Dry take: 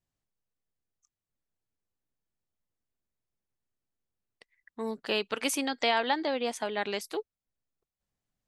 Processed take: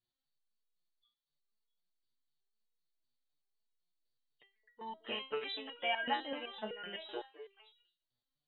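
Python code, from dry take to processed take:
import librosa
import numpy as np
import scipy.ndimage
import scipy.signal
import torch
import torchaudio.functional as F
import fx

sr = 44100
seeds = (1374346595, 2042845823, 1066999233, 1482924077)

y = fx.freq_compress(x, sr, knee_hz=2800.0, ratio=4.0)
y = fx.echo_stepped(y, sr, ms=216, hz=480.0, octaves=1.4, feedback_pct=70, wet_db=-10)
y = fx.resonator_held(y, sr, hz=7.9, low_hz=120.0, high_hz=480.0)
y = y * librosa.db_to_amplitude(3.5)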